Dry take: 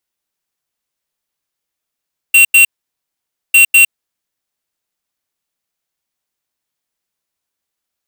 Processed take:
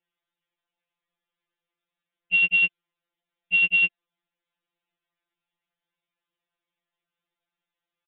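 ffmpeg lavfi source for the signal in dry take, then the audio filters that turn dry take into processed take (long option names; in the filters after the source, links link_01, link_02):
-f lavfi -i "aevalsrc='0.501*(2*lt(mod(2740*t,1),0.5)-1)*clip(min(mod(mod(t,1.2),0.2),0.11-mod(mod(t,1.2),0.2))/0.005,0,1)*lt(mod(t,1.2),0.4)':duration=2.4:sample_rate=44100"
-af "aresample=8000,asoftclip=type=tanh:threshold=-15.5dB,aresample=44100,afftfilt=real='re*2.83*eq(mod(b,8),0)':imag='im*2.83*eq(mod(b,8),0)':win_size=2048:overlap=0.75"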